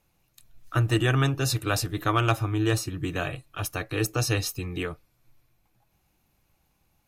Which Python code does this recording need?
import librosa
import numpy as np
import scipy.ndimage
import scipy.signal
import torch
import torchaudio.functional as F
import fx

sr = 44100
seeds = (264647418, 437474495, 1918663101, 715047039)

y = fx.fix_declip(x, sr, threshold_db=-12.0)